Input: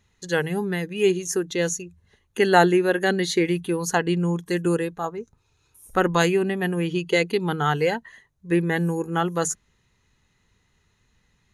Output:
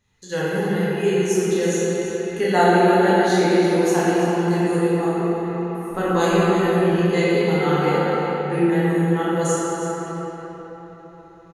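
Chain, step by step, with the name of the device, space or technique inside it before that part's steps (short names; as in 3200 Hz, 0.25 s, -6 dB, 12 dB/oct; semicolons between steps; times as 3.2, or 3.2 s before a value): cave (echo 0.328 s -11 dB; reverb RT60 4.4 s, pre-delay 9 ms, DRR -10 dB); dynamic EQ 2400 Hz, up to -4 dB, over -28 dBFS, Q 0.79; gain -6.5 dB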